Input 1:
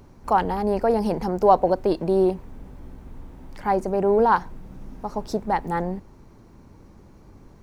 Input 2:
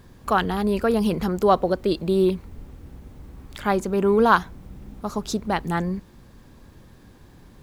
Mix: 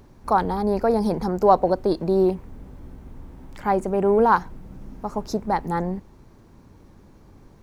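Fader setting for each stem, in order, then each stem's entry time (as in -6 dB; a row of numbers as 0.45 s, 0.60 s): -1.5 dB, -11.0 dB; 0.00 s, 0.00 s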